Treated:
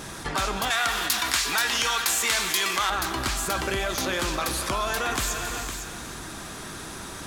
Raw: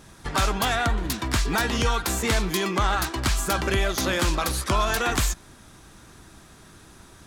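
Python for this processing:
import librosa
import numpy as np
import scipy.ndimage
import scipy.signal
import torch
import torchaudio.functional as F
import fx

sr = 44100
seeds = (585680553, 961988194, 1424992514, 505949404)

y = fx.low_shelf(x, sr, hz=180.0, db=-8.5)
y = y + 10.0 ** (-17.5 / 20.0) * np.pad(y, (int(509 * sr / 1000.0), 0))[:len(y)]
y = fx.rev_gated(y, sr, seeds[0], gate_ms=440, shape='flat', drr_db=10.0)
y = fx.rider(y, sr, range_db=10, speed_s=0.5)
y = fx.tilt_shelf(y, sr, db=-9.5, hz=700.0, at=(0.7, 2.9))
y = fx.env_flatten(y, sr, amount_pct=50)
y = y * librosa.db_to_amplitude(-6.5)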